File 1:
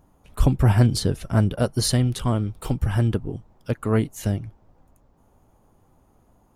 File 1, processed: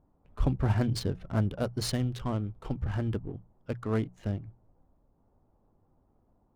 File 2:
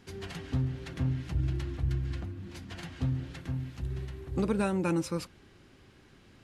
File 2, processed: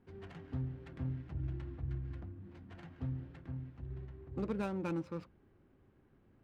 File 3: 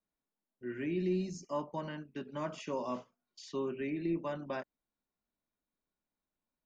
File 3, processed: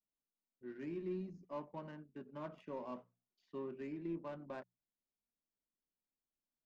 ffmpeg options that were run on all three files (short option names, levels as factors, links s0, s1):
-af "bandreject=f=60:t=h:w=6,bandreject=f=120:t=h:w=6,bandreject=f=180:t=h:w=6,adynamicsmooth=sensitivity=6.5:basefreq=1200,volume=0.398"